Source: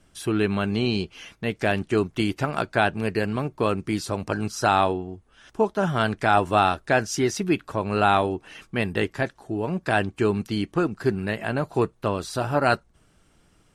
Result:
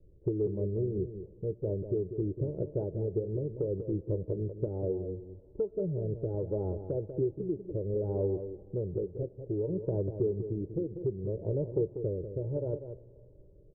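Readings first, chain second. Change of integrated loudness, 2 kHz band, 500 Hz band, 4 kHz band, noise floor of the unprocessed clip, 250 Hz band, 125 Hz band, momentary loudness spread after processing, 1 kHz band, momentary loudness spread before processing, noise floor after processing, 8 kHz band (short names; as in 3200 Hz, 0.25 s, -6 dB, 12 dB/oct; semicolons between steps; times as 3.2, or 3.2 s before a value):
-9.5 dB, under -40 dB, -6.5 dB, under -40 dB, -61 dBFS, -10.0 dB, -4.5 dB, 5 LU, -32.5 dB, 8 LU, -56 dBFS, under -40 dB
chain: steep low-pass 530 Hz 36 dB/oct; comb 2.1 ms, depth 86%; compressor 3:1, threshold -29 dBFS, peak gain reduction 11.5 dB; rotary speaker horn 6.3 Hz, later 0.65 Hz, at 3.09; echo 0.192 s -9.5 dB; digital reverb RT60 3.3 s, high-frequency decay 0.95×, pre-delay 45 ms, DRR 19.5 dB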